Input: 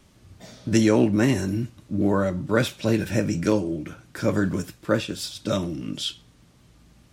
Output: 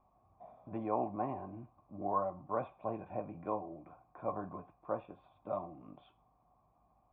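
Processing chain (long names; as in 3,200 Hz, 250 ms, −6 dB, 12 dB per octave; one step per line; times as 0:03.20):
mains hum 50 Hz, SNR 32 dB
formant resonators in series a
level +4.5 dB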